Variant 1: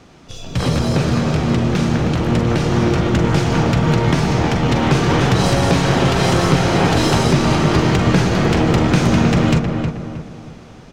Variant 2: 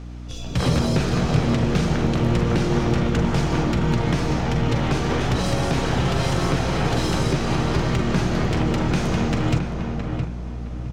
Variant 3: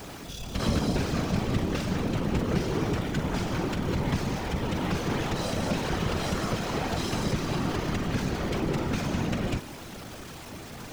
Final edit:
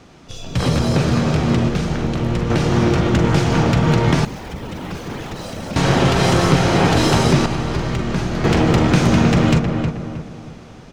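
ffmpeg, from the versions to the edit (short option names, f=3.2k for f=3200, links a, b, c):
-filter_complex "[1:a]asplit=2[a][b];[0:a]asplit=4[c][d][e][f];[c]atrim=end=1.692[g];[a]atrim=start=1.688:end=2.502[h];[d]atrim=start=2.498:end=4.252[i];[2:a]atrim=start=4.248:end=5.762[j];[e]atrim=start=5.758:end=7.462[k];[b]atrim=start=7.458:end=8.442[l];[f]atrim=start=8.438[m];[g][h]acrossfade=d=0.004:c1=hsin:c2=hsin[n];[n][i]acrossfade=d=0.004:c1=hsin:c2=hsin[o];[o][j]acrossfade=d=0.004:c1=hsin:c2=hsin[p];[p][k]acrossfade=d=0.004:c1=hsin:c2=hsin[q];[q][l]acrossfade=d=0.004:c1=hsin:c2=hsin[r];[r][m]acrossfade=d=0.004:c1=hsin:c2=hsin"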